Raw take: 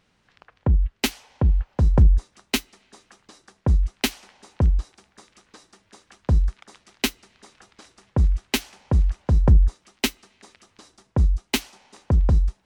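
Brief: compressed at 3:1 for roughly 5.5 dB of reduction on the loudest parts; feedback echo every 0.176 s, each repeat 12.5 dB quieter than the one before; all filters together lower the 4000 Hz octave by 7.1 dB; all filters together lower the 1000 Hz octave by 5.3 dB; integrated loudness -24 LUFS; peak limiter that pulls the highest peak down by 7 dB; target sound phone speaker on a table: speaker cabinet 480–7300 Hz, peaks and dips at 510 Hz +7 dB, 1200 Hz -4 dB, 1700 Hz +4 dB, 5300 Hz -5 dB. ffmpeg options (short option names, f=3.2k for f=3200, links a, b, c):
-af "equalizer=f=1k:t=o:g=-6,equalizer=f=4k:t=o:g=-8.5,acompressor=threshold=-17dB:ratio=3,alimiter=limit=-17.5dB:level=0:latency=1,highpass=f=480:w=0.5412,highpass=f=480:w=1.3066,equalizer=f=510:t=q:w=4:g=7,equalizer=f=1.2k:t=q:w=4:g=-4,equalizer=f=1.7k:t=q:w=4:g=4,equalizer=f=5.3k:t=q:w=4:g=-5,lowpass=f=7.3k:w=0.5412,lowpass=f=7.3k:w=1.3066,aecho=1:1:176|352|528:0.237|0.0569|0.0137,volume=16.5dB"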